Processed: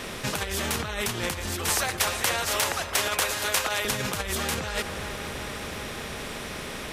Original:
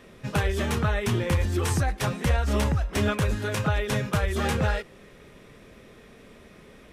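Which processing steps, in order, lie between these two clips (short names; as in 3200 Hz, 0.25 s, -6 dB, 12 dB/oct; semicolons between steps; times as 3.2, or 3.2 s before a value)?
1.69–3.85 HPF 540 Hz 24 dB/oct; dark delay 0.374 s, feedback 74%, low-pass 1800 Hz, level -22.5 dB; negative-ratio compressor -30 dBFS, ratio -1; spectral compressor 2:1; gain +5.5 dB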